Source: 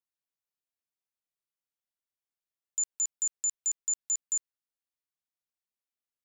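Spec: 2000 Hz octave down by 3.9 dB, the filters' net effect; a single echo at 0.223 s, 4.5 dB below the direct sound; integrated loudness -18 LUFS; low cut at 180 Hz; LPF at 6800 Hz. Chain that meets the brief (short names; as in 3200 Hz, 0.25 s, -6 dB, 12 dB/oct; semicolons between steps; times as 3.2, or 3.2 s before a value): HPF 180 Hz; LPF 6800 Hz; bell 2000 Hz -5 dB; echo 0.223 s -4.5 dB; gain +12.5 dB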